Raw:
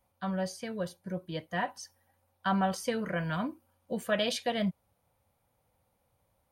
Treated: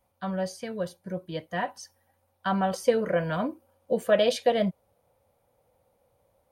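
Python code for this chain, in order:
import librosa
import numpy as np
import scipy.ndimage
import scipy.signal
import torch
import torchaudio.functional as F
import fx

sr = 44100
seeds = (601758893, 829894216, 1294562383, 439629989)

y = fx.peak_eq(x, sr, hz=510.0, db=fx.steps((0.0, 3.5), (2.73, 10.5)), octaves=1.1)
y = F.gain(torch.from_numpy(y), 1.0).numpy()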